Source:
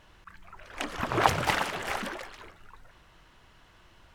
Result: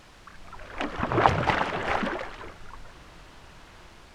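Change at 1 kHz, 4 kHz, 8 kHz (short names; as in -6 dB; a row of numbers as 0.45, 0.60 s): +3.5, -1.5, -8.5 dB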